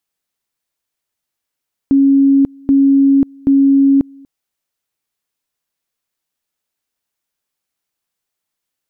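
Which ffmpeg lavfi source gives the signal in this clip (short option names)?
-f lavfi -i "aevalsrc='pow(10,(-6.5-29*gte(mod(t,0.78),0.54))/20)*sin(2*PI*275*t)':d=2.34:s=44100"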